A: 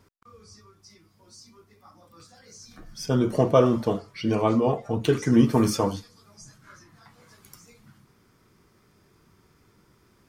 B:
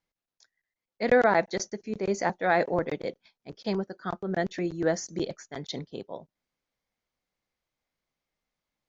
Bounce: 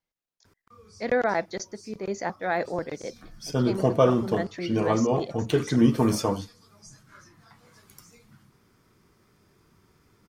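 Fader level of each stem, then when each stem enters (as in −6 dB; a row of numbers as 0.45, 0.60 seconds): −1.5, −3.0 decibels; 0.45, 0.00 seconds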